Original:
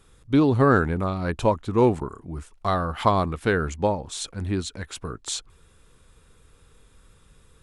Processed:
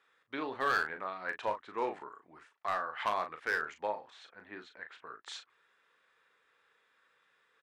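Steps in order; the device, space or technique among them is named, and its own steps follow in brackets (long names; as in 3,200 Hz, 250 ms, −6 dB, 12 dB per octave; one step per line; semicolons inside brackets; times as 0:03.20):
0:04.10–0:05.07: low-pass filter 1,600 Hz 6 dB per octave
megaphone (band-pass filter 670–3,400 Hz; parametric band 1,800 Hz +9 dB 0.55 octaves; hard clipping −15.5 dBFS, distortion −13 dB; double-tracking delay 38 ms −8 dB)
level −9 dB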